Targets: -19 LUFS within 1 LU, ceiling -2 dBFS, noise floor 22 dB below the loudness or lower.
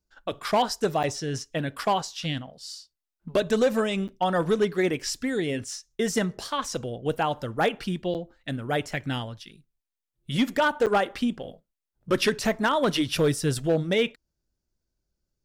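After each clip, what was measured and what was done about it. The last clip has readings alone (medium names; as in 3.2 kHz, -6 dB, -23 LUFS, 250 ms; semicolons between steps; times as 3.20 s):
clipped samples 0.6%; clipping level -15.5 dBFS; dropouts 4; longest dropout 8.3 ms; loudness -26.5 LUFS; peak level -15.5 dBFS; loudness target -19.0 LUFS
-> clip repair -15.5 dBFS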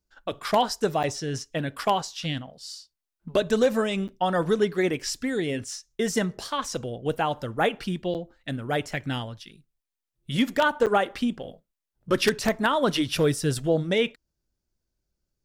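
clipped samples 0.0%; dropouts 4; longest dropout 8.3 ms
-> interpolate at 1.03/4.08/8.14/10.86 s, 8.3 ms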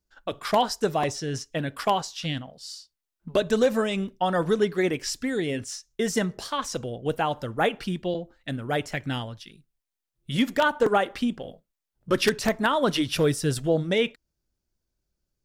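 dropouts 0; loudness -26.5 LUFS; peak level -6.5 dBFS; loudness target -19.0 LUFS
-> trim +7.5 dB; peak limiter -2 dBFS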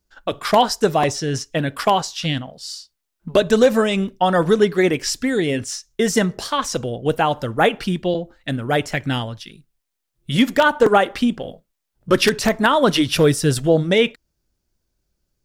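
loudness -19.0 LUFS; peak level -2.0 dBFS; noise floor -77 dBFS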